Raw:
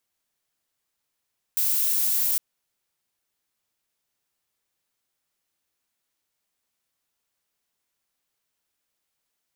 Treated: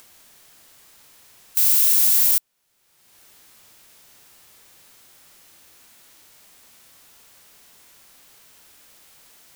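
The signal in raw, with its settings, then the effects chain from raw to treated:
noise violet, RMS −23 dBFS 0.81 s
harmonic and percussive parts rebalanced harmonic +4 dB
in parallel at −3 dB: upward compression, threshold −26 dBFS

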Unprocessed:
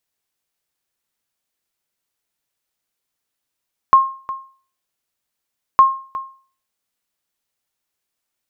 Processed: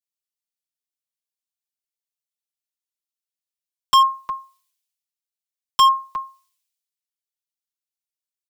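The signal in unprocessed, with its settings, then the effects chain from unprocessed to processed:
ping with an echo 1,070 Hz, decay 0.42 s, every 1.86 s, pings 2, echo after 0.36 s, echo −16.5 dB −2.5 dBFS
comb filter 5.9 ms
hard clipping −17 dBFS
multiband upward and downward expander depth 100%

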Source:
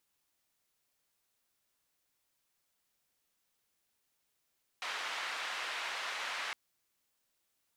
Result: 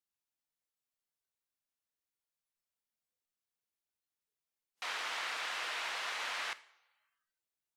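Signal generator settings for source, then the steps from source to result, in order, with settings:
band-limited noise 910–2,500 Hz, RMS −39 dBFS 1.71 s
coupled-rooms reverb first 0.55 s, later 1.8 s, from −18 dB, DRR 13 dB
noise reduction from a noise print of the clip's start 15 dB

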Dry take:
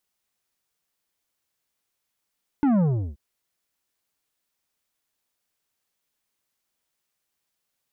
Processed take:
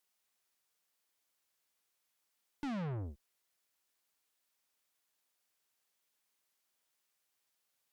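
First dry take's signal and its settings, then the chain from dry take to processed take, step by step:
bass drop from 300 Hz, over 0.53 s, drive 9.5 dB, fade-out 0.36 s, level −18 dB
low-shelf EQ 260 Hz −9.5 dB
tube saturation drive 37 dB, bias 0.45

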